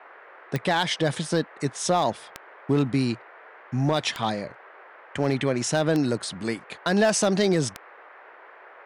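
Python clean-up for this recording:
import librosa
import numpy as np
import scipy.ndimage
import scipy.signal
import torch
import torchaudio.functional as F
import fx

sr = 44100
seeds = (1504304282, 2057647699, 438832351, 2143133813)

y = fx.fix_declip(x, sr, threshold_db=-13.5)
y = fx.fix_declick_ar(y, sr, threshold=10.0)
y = fx.noise_reduce(y, sr, print_start_s=8.12, print_end_s=8.62, reduce_db=22.0)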